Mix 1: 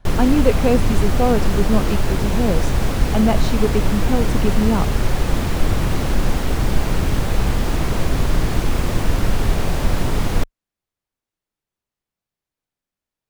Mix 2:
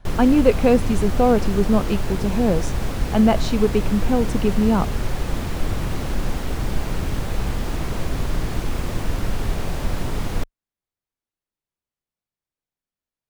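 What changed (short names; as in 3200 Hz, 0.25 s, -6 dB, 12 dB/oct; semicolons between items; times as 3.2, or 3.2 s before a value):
background -5.5 dB; reverb: on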